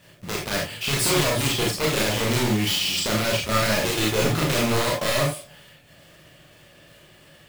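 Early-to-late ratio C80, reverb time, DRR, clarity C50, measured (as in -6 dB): 11.5 dB, no single decay rate, -2.5 dB, 4.5 dB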